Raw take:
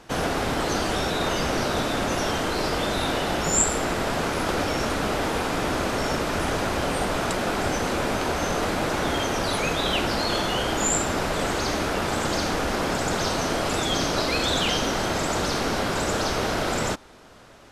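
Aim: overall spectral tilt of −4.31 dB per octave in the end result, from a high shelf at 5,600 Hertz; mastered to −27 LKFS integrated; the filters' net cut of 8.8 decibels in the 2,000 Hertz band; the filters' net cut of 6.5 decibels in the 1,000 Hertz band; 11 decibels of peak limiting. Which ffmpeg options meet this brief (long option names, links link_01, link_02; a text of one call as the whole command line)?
ffmpeg -i in.wav -af "equalizer=frequency=1000:width_type=o:gain=-6.5,equalizer=frequency=2000:width_type=o:gain=-9,highshelf=frequency=5600:gain=-4.5,volume=3dB,alimiter=limit=-17.5dB:level=0:latency=1" out.wav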